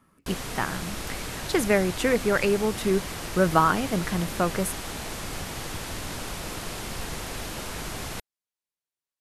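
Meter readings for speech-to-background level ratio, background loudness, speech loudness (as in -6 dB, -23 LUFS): 8.5 dB, -34.0 LUFS, -25.5 LUFS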